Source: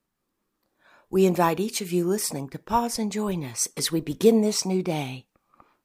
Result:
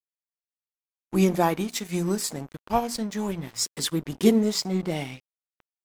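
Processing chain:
mains-hum notches 60/120/180/240/300 Hz
formants moved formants −2 semitones
dead-zone distortion −40.5 dBFS

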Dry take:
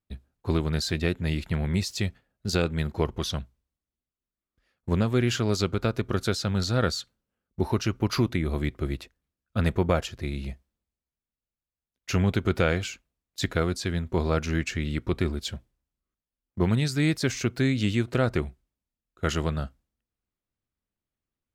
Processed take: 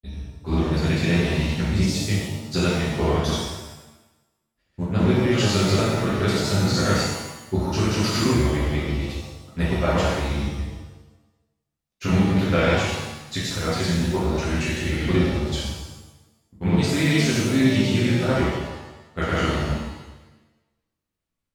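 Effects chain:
granular cloud, pitch spread up and down by 0 semitones
reverb with rising layers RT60 1 s, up +7 semitones, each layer −8 dB, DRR −7.5 dB
level −2 dB

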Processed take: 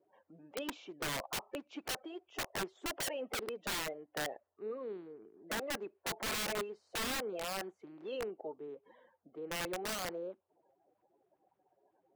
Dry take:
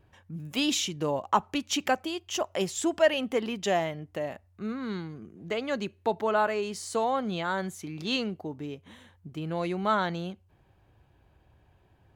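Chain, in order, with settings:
spectral magnitudes quantised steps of 30 dB
four-pole ladder band-pass 630 Hz, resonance 35%
wrap-around overflow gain 37.5 dB
level +6 dB

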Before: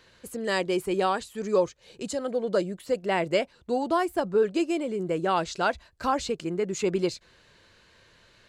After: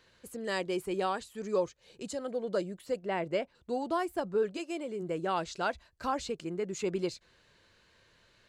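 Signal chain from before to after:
0:02.99–0:03.55: high-shelf EQ 3,900 Hz −10.5 dB
0:04.56–0:05.01: high-pass filter 590 Hz → 160 Hz
level −6.5 dB

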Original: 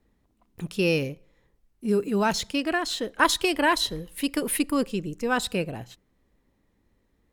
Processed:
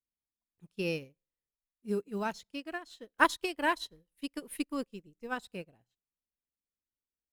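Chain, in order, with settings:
one scale factor per block 7 bits
expander for the loud parts 2.5 to 1, over −39 dBFS
level −2.5 dB

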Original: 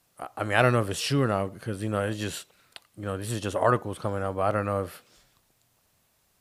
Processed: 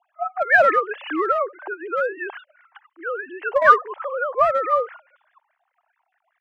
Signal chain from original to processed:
three sine waves on the formant tracks
three-way crossover with the lows and the highs turned down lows −14 dB, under 340 Hz, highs −21 dB, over 2,700 Hz
in parallel at −3 dB: hard clipping −23 dBFS, distortion −9 dB
on the sum: auto-filter bell 4.8 Hz 820–1,900 Hz +14 dB
level −1.5 dB

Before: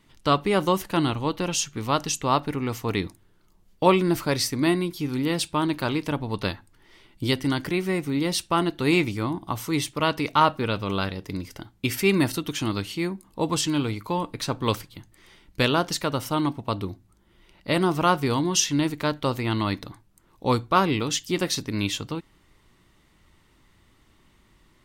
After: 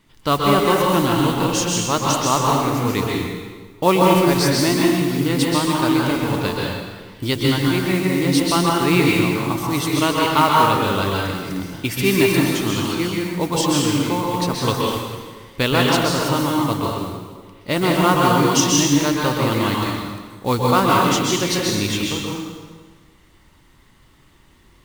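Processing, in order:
noise that follows the level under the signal 19 dB
dense smooth reverb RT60 1.5 s, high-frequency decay 0.85×, pre-delay 115 ms, DRR −3 dB
level +2 dB

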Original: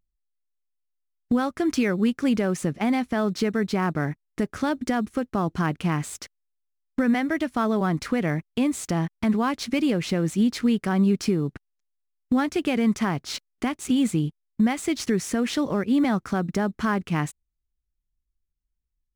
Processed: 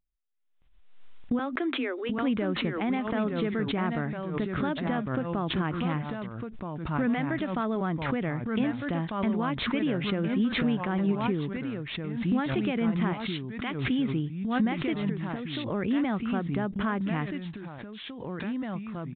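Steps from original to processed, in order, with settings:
0:01.39–0:02.16: Chebyshev high-pass filter 250 Hz, order 10
0:13.13–0:13.71: spectral tilt +4 dB per octave
0:14.98–0:15.70: downward compressor, threshold −27 dBFS, peak gain reduction 8.5 dB
delay with pitch and tempo change per echo 620 ms, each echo −2 semitones, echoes 2, each echo −6 dB
downsampling to 8,000 Hz
background raised ahead of every attack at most 55 dB per second
level −6 dB

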